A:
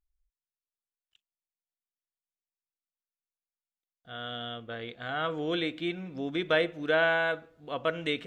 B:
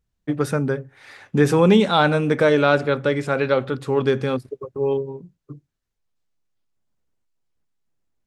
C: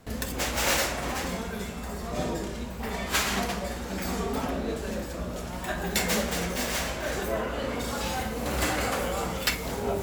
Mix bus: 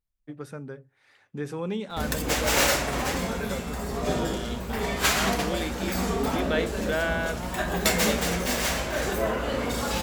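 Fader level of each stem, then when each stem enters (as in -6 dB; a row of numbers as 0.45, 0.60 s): -2.5, -16.5, +3.0 dB; 0.00, 0.00, 1.90 s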